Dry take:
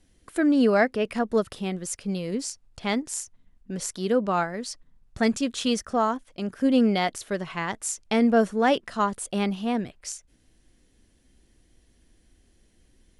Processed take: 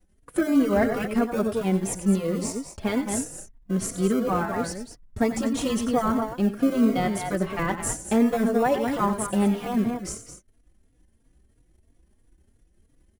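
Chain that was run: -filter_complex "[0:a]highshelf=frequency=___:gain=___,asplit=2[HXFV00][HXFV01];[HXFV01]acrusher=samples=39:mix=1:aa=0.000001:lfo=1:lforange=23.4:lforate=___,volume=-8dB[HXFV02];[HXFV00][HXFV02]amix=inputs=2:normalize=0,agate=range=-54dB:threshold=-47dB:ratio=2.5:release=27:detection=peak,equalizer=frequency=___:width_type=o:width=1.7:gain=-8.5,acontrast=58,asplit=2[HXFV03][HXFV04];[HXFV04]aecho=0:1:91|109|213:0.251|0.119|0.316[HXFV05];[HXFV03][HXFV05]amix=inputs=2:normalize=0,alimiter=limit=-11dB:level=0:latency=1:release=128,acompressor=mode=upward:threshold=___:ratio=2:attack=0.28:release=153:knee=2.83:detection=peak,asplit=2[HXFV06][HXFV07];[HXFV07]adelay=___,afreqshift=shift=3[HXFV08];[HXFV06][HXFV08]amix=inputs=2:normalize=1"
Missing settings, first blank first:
9300, 2.5, 0.32, 4200, -43dB, 3.6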